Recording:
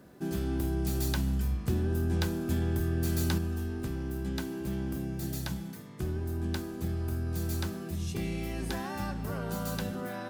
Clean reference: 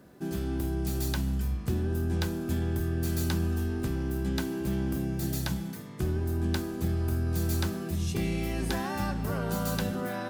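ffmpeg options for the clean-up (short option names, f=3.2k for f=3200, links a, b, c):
-af "asetnsamples=n=441:p=0,asendcmd='3.38 volume volume 4dB',volume=0dB"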